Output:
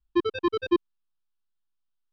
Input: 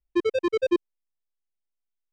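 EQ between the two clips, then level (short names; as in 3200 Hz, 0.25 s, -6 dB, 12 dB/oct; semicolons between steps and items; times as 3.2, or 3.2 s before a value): air absorption 110 m; fixed phaser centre 2100 Hz, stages 6; +5.5 dB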